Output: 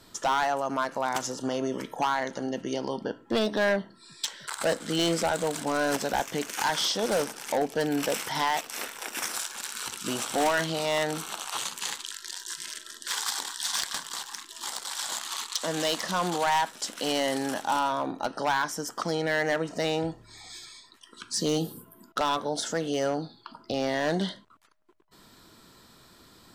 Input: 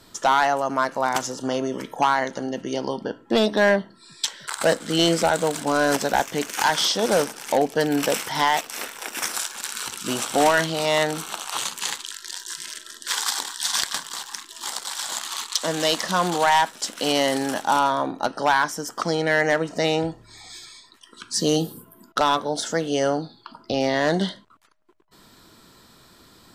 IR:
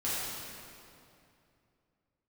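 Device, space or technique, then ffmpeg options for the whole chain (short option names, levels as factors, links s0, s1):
clipper into limiter: -af "asoftclip=type=hard:threshold=0.2,alimiter=limit=0.15:level=0:latency=1:release=67,volume=0.708"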